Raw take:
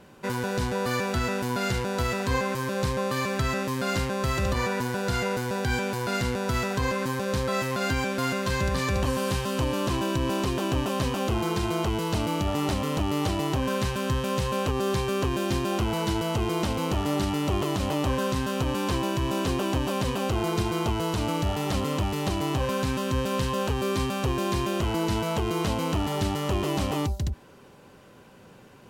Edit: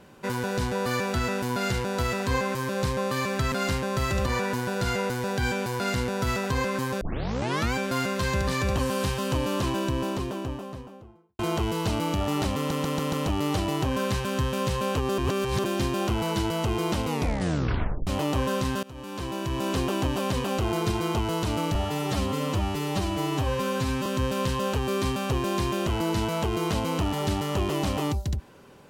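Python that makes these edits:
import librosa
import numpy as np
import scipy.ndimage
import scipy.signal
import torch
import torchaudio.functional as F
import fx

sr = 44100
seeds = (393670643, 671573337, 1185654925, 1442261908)

y = fx.studio_fade_out(x, sr, start_s=9.83, length_s=1.83)
y = fx.edit(y, sr, fx.cut(start_s=3.52, length_s=0.27),
    fx.tape_start(start_s=7.28, length_s=0.73),
    fx.stutter(start_s=12.84, slice_s=0.14, count=5),
    fx.reverse_span(start_s=14.89, length_s=0.46),
    fx.tape_stop(start_s=16.76, length_s=1.02),
    fx.fade_in_from(start_s=18.54, length_s=0.92, floor_db=-23.0),
    fx.stretch_span(start_s=21.46, length_s=1.54, factor=1.5), tone=tone)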